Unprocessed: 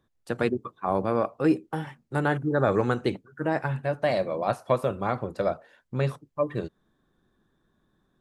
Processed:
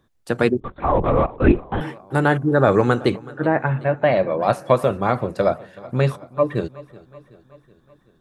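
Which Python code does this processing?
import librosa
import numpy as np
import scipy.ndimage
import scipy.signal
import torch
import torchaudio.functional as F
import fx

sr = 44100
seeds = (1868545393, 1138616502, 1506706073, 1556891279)

y = fx.lowpass(x, sr, hz=fx.line((3.26, 2100.0), (4.38, 3400.0)), slope=24, at=(3.26, 4.38), fade=0.02)
y = fx.echo_feedback(y, sr, ms=376, feedback_pct=58, wet_db=-21)
y = fx.lpc_vocoder(y, sr, seeds[0], excitation='whisper', order=8, at=(0.6, 1.81))
y = y * 10.0 ** (7.5 / 20.0)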